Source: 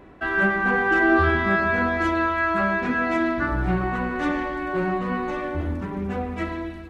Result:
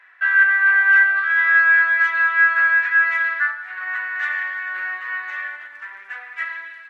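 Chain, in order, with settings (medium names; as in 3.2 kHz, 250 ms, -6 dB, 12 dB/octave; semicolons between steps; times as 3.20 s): tilt EQ -3 dB/octave; in parallel at +1.5 dB: compressor with a negative ratio -17 dBFS, ratio -0.5; on the sum: ladder high-pass 1.6 kHz, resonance 70%; trim +6.5 dB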